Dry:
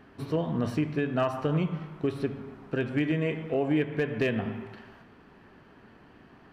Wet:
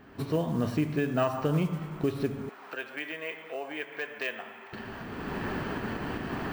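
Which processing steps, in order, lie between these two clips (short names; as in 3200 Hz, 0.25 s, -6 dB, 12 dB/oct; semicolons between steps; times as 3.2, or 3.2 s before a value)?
recorder AGC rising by 25 dB/s; 2.49–4.73 HPF 800 Hz 12 dB/oct; modulation noise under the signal 30 dB; careless resampling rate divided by 2×, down none, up hold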